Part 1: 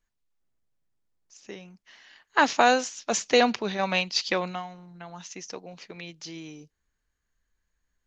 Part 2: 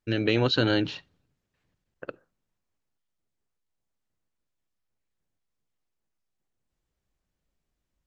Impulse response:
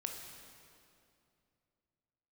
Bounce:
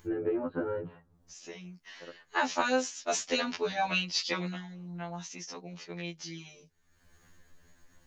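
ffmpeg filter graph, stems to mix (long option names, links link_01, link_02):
-filter_complex "[0:a]acompressor=threshold=-22dB:ratio=3,volume=0dB,asplit=2[link_01][link_02];[1:a]lowpass=frequency=1300:width=0.5412,lowpass=frequency=1300:width=1.3066,acompressor=threshold=-25dB:ratio=6,volume=0.5dB[link_03];[link_02]apad=whole_len=355760[link_04];[link_03][link_04]sidechaincompress=threshold=-54dB:ratio=8:attack=16:release=629[link_05];[link_01][link_05]amix=inputs=2:normalize=0,acompressor=mode=upward:threshold=-39dB:ratio=2.5,afftfilt=real='re*2*eq(mod(b,4),0)':imag='im*2*eq(mod(b,4),0)':win_size=2048:overlap=0.75"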